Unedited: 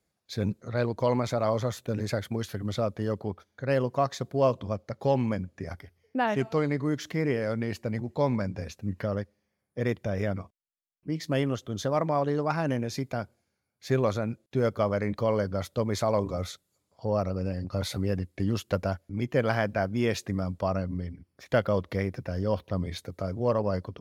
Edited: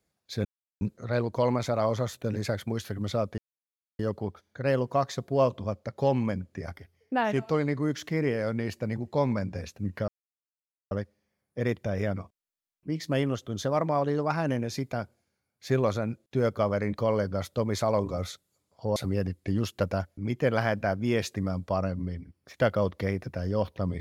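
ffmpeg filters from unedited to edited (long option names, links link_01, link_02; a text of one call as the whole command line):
ffmpeg -i in.wav -filter_complex "[0:a]asplit=5[link_01][link_02][link_03][link_04][link_05];[link_01]atrim=end=0.45,asetpts=PTS-STARTPTS,afade=type=out:start_time=0.446:duration=0.004:curve=hsin,apad=pad_dur=0.36[link_06];[link_02]atrim=start=0.45:end=3.02,asetpts=PTS-STARTPTS,afade=type=in:duration=0.004:curve=hsin,afade=type=out:start_time=2.566:duration=0.004:curve=hsin,apad=pad_dur=0.61[link_07];[link_03]atrim=start=3.02:end=9.11,asetpts=PTS-STARTPTS,afade=type=in:duration=0.004:curve=hsin,afade=type=out:start_time=6.086:duration=0.004:curve=hsin,apad=pad_dur=0.83[link_08];[link_04]atrim=start=9.11:end=17.162,asetpts=PTS-STARTPTS,afade=type=in:duration=0.004:curve=hsin[link_09];[link_05]atrim=start=17.878[link_10];[link_06][link_07][link_08][link_09]concat=n=4:v=0:a=1[link_11];[link_11][link_10]acrossfade=duration=0.004:curve1=hsin:curve2=hsin" out.wav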